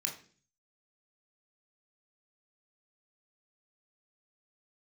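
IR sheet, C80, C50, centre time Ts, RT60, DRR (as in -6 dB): 14.5 dB, 9.5 dB, 20 ms, 0.45 s, 0.5 dB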